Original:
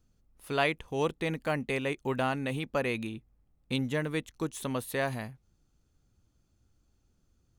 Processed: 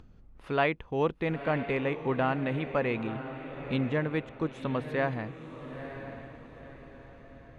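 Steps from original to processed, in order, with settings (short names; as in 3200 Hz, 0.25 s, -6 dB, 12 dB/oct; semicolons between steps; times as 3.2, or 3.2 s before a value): LPF 2300 Hz 12 dB/oct; upward compressor, threshold -44 dBFS; diffused feedback echo 0.969 s, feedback 42%, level -10.5 dB; gain +2 dB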